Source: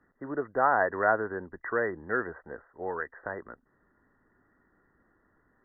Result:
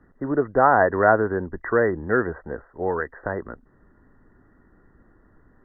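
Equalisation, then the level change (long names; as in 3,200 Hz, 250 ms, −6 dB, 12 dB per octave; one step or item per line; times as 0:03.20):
spectral tilt −2.5 dB per octave
+7.0 dB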